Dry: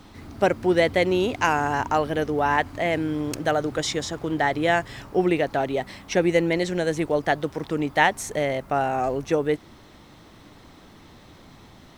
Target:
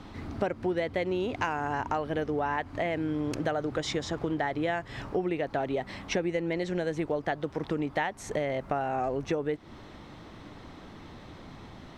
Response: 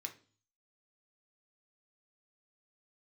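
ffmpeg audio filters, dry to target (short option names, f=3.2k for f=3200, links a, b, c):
-af "aemphasis=mode=reproduction:type=50fm,acompressor=threshold=-29dB:ratio=6,volume=2dB"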